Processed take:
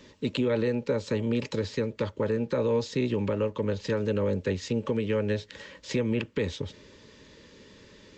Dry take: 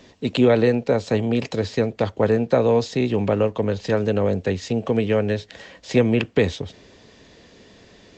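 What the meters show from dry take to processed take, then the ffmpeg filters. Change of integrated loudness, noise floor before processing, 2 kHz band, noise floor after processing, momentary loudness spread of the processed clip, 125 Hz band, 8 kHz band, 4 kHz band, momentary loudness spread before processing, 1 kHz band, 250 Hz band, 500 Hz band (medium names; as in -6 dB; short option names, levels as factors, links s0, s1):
-8.0 dB, -51 dBFS, -7.5 dB, -55 dBFS, 6 LU, -7.0 dB, no reading, -6.0 dB, 7 LU, -10.5 dB, -7.5 dB, -8.0 dB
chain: -af "asuperstop=centerf=720:order=20:qfactor=3.8,alimiter=limit=0.2:level=0:latency=1:release=234,volume=0.708"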